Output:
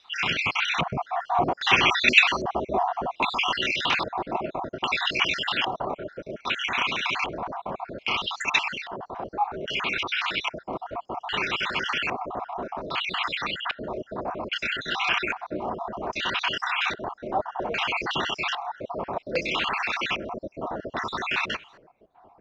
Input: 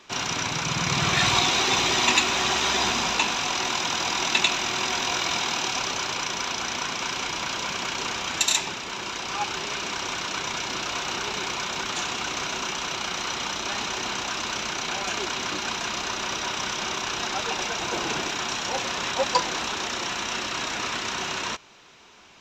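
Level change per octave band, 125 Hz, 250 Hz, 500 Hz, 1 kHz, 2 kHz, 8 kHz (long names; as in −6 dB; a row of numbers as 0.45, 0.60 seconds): −3.5, −1.0, +1.5, +0.5, +1.5, −18.0 decibels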